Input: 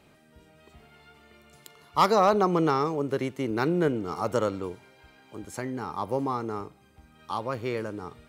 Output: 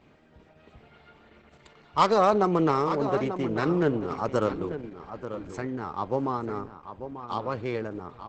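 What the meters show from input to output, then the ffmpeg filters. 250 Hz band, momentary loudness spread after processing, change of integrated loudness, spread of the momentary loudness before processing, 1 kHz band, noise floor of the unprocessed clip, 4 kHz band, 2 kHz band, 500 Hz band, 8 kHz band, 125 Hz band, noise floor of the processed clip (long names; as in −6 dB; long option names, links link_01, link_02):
+1.0 dB, 16 LU, 0.0 dB, 16 LU, 0.0 dB, −59 dBFS, −1.0 dB, 0.0 dB, +0.5 dB, can't be measured, +1.0 dB, −58 dBFS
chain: -filter_complex "[0:a]adynamicsmooth=sensitivity=4.5:basefreq=4100,asplit=2[link_01][link_02];[link_02]adelay=890,lowpass=frequency=3000:poles=1,volume=-10dB,asplit=2[link_03][link_04];[link_04]adelay=890,lowpass=frequency=3000:poles=1,volume=0.17[link_05];[link_01][link_03][link_05]amix=inputs=3:normalize=0,volume=1dB" -ar 48000 -c:a libopus -b:a 10k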